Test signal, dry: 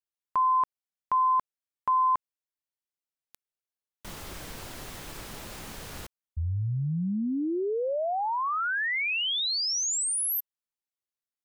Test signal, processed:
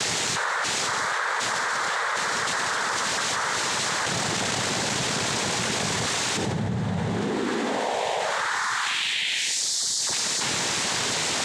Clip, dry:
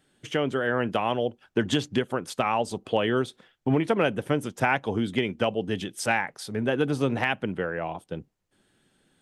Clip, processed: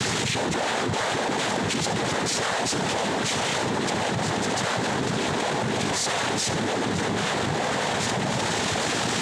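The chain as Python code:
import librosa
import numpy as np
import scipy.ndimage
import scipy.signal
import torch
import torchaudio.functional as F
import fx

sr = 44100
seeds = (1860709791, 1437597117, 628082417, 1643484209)

y = x + 0.5 * 10.0 ** (-29.0 / 20.0) * np.diff(np.sign(x), prepend=np.sign(x[:1]))
y = fx.echo_diffused(y, sr, ms=592, feedback_pct=78, wet_db=-13.0)
y = fx.schmitt(y, sr, flips_db=-38.5)
y = fx.echo_thinned(y, sr, ms=71, feedback_pct=53, hz=420.0, wet_db=-15.0)
y = fx.noise_vocoder(y, sr, seeds[0], bands=6)
y = fx.dynamic_eq(y, sr, hz=330.0, q=2.3, threshold_db=-42.0, ratio=4.0, max_db=-4)
y = fx.env_flatten(y, sr, amount_pct=100)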